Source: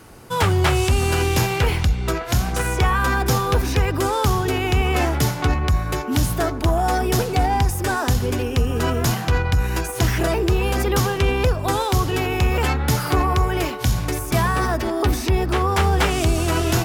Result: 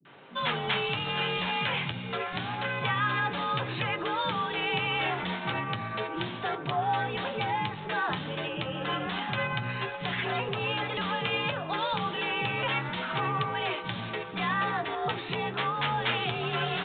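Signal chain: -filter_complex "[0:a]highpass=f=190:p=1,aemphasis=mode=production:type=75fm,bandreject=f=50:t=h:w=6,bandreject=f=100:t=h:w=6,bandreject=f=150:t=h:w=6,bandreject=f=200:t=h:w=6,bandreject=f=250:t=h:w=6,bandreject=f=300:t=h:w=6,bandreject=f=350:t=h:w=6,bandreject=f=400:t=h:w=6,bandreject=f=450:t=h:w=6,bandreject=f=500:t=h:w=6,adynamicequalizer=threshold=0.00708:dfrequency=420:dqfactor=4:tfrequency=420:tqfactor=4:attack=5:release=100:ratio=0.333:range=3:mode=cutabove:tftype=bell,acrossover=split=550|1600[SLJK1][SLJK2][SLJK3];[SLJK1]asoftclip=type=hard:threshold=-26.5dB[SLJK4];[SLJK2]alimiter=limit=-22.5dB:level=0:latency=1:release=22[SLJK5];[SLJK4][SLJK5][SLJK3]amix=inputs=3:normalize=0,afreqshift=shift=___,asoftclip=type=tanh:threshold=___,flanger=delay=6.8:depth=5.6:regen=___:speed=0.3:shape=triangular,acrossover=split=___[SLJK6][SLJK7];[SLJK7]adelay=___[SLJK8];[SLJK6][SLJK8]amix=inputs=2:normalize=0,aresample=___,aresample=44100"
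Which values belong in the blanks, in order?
61, -12.5dB, 56, 260, 50, 8000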